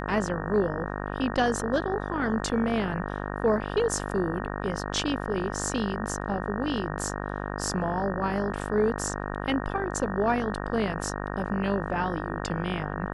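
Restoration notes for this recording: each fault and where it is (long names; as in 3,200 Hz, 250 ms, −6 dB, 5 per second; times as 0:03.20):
mains buzz 50 Hz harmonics 37 −33 dBFS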